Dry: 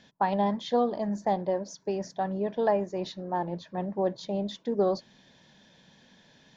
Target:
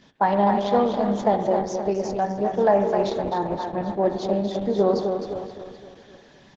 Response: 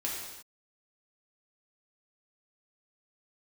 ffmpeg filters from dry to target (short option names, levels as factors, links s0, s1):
-filter_complex "[0:a]aecho=1:1:258|516|774|1032|1290|1548:0.473|0.227|0.109|0.0523|0.0251|0.0121,asplit=2[s0][s1];[1:a]atrim=start_sample=2205,lowpass=2400[s2];[s1][s2]afir=irnorm=-1:irlink=0,volume=0.501[s3];[s0][s3]amix=inputs=2:normalize=0,volume=1.41" -ar 48000 -c:a libopus -b:a 10k